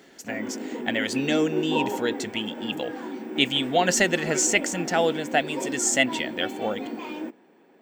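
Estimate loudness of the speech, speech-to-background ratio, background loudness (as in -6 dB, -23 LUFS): -25.0 LUFS, 7.5 dB, -32.5 LUFS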